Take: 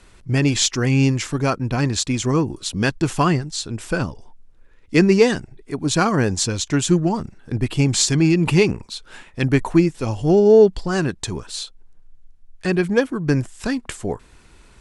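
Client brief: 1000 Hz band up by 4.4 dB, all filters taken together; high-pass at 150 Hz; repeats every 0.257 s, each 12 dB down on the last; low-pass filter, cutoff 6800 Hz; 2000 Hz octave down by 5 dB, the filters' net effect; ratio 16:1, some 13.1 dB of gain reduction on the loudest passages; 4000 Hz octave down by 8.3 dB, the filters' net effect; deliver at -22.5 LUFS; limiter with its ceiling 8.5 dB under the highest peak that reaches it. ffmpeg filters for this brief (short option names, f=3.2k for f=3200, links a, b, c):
-af "highpass=150,lowpass=6.8k,equalizer=f=1k:t=o:g=8,equalizer=f=2k:t=o:g=-8,equalizer=f=4k:t=o:g=-8,acompressor=threshold=-19dB:ratio=16,alimiter=limit=-18dB:level=0:latency=1,aecho=1:1:257|514|771:0.251|0.0628|0.0157,volume=6dB"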